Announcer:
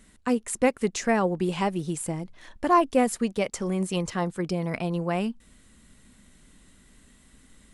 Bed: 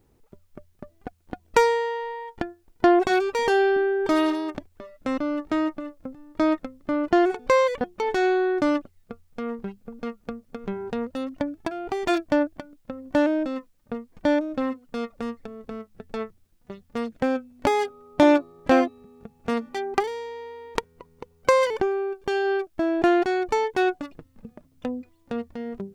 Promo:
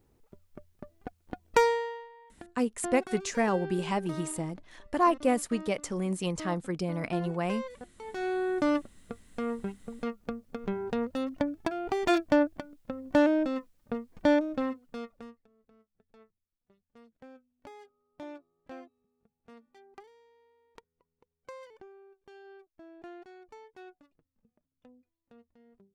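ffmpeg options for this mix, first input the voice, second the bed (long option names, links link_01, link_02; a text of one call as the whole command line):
ffmpeg -i stem1.wav -i stem2.wav -filter_complex "[0:a]adelay=2300,volume=-4dB[link_01];[1:a]volume=12.5dB,afade=type=out:start_time=1.67:duration=0.42:silence=0.188365,afade=type=in:start_time=8.02:duration=0.91:silence=0.141254,afade=type=out:start_time=14.32:duration=1.11:silence=0.0530884[link_02];[link_01][link_02]amix=inputs=2:normalize=0" out.wav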